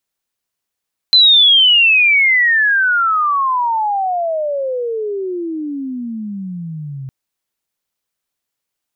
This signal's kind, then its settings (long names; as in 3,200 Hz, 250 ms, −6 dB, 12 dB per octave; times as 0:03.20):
glide logarithmic 4,100 Hz → 130 Hz −5 dBFS → −24.5 dBFS 5.96 s